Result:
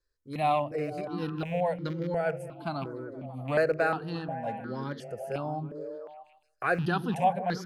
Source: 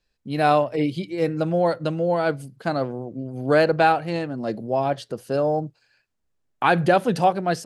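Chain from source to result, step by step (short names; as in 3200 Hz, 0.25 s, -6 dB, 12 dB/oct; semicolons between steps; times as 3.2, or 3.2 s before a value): rattling part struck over -25 dBFS, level -26 dBFS; delay with a stepping band-pass 0.158 s, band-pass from 210 Hz, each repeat 0.7 oct, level -4.5 dB; step phaser 2.8 Hz 750–2600 Hz; gain -5.5 dB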